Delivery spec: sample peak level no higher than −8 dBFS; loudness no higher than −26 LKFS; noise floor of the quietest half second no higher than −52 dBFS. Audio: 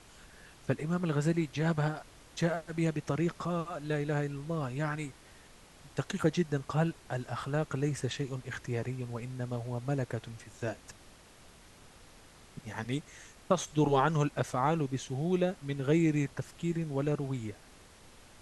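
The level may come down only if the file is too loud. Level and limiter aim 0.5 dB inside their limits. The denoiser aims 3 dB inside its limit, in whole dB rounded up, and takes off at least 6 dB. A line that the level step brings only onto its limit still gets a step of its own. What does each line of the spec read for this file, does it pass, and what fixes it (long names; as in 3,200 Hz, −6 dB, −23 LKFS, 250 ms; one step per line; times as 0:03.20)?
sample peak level −12.5 dBFS: in spec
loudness −33.0 LKFS: in spec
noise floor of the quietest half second −56 dBFS: in spec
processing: no processing needed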